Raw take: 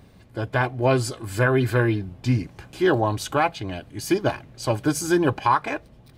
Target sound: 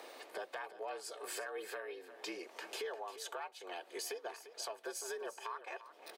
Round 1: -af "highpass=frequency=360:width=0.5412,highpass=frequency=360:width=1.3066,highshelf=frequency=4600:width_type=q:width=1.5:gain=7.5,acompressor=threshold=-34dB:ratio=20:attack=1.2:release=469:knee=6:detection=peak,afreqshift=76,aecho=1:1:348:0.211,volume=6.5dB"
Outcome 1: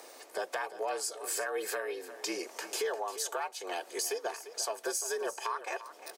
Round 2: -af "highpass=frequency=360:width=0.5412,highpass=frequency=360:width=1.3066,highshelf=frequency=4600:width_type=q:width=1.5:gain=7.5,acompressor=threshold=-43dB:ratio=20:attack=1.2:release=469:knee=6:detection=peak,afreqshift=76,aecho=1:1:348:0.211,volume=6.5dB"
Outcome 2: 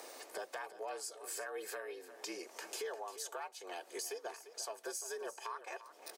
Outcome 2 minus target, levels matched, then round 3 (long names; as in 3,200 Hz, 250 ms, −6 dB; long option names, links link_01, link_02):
8,000 Hz band +3.0 dB
-af "highpass=frequency=360:width=0.5412,highpass=frequency=360:width=1.3066,acompressor=threshold=-43dB:ratio=20:attack=1.2:release=469:knee=6:detection=peak,afreqshift=76,aecho=1:1:348:0.211,volume=6.5dB"